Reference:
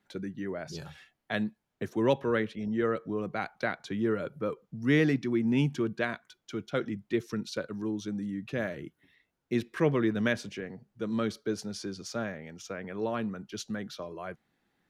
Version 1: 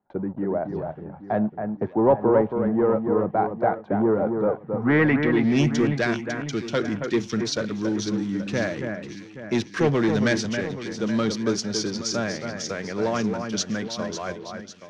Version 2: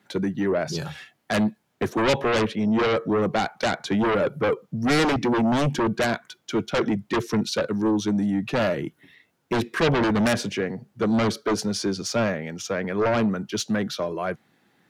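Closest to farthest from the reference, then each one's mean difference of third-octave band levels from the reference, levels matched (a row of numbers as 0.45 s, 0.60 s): 2, 1; 5.0 dB, 7.5 dB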